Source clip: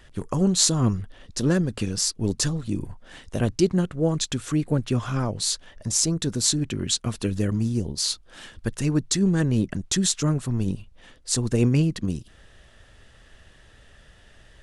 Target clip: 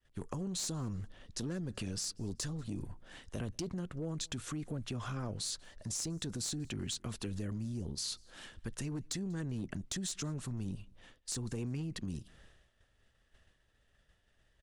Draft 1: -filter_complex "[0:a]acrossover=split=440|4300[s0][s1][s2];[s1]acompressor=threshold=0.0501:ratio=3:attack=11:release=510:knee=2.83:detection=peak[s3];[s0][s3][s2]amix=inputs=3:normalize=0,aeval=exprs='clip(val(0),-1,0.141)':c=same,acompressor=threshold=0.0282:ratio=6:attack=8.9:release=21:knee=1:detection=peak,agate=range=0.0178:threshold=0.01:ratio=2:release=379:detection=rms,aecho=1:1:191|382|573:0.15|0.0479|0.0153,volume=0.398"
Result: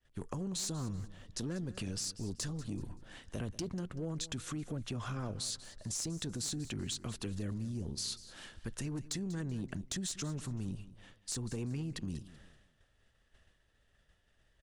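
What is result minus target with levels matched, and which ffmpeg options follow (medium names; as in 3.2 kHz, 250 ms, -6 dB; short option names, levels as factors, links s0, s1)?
echo-to-direct +11.5 dB
-filter_complex "[0:a]acrossover=split=440|4300[s0][s1][s2];[s1]acompressor=threshold=0.0501:ratio=3:attack=11:release=510:knee=2.83:detection=peak[s3];[s0][s3][s2]amix=inputs=3:normalize=0,aeval=exprs='clip(val(0),-1,0.141)':c=same,acompressor=threshold=0.0282:ratio=6:attack=8.9:release=21:knee=1:detection=peak,agate=range=0.0178:threshold=0.01:ratio=2:release=379:detection=rms,aecho=1:1:191|382:0.0398|0.0127,volume=0.398"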